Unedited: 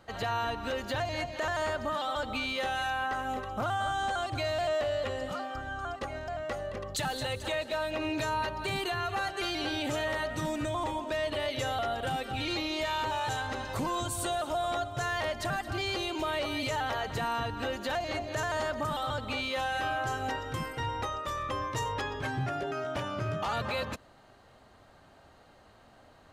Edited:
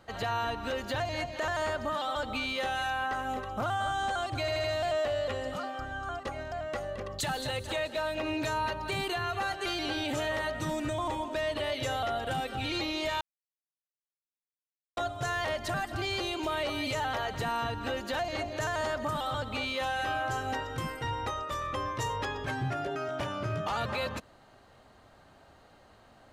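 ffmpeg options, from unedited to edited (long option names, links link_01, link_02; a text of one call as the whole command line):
ffmpeg -i in.wav -filter_complex "[0:a]asplit=6[link_01][link_02][link_03][link_04][link_05][link_06];[link_01]atrim=end=4.482[link_07];[link_02]atrim=start=4.398:end=4.482[link_08];[link_03]atrim=start=4.398:end=4.482[link_09];[link_04]atrim=start=4.398:end=12.97,asetpts=PTS-STARTPTS,afade=type=out:start_time=8.568:duration=0.004:curve=hsin[link_10];[link_05]atrim=start=12.97:end=14.73,asetpts=PTS-STARTPTS,volume=0[link_11];[link_06]atrim=start=14.73,asetpts=PTS-STARTPTS,afade=type=in:duration=0.004:curve=hsin[link_12];[link_07][link_08]acrossfade=duration=0.004:curve1=hsin:curve2=hsin[link_13];[link_13][link_09]acrossfade=duration=0.004:curve1=hsin:curve2=hsin[link_14];[link_10][link_11][link_12]concat=n=3:v=0:a=1[link_15];[link_14][link_15]acrossfade=duration=0.004:curve1=hsin:curve2=hsin" out.wav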